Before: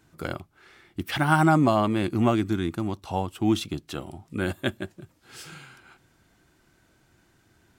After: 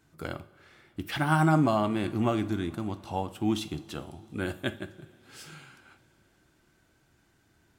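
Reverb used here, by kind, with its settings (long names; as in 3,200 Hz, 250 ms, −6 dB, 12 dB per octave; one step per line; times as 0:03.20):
coupled-rooms reverb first 0.41 s, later 4.9 s, from −21 dB, DRR 10 dB
level −4.5 dB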